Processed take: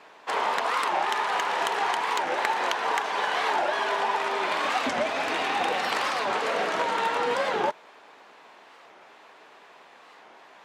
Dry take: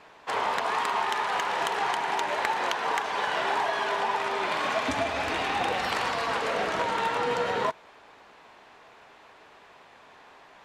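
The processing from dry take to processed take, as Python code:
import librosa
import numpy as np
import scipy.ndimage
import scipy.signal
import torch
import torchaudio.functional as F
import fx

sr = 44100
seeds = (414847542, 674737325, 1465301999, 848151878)

y = scipy.signal.sosfilt(scipy.signal.butter(2, 220.0, 'highpass', fs=sr, output='sos'), x)
y = fx.record_warp(y, sr, rpm=45.0, depth_cents=250.0)
y = y * 10.0 ** (1.5 / 20.0)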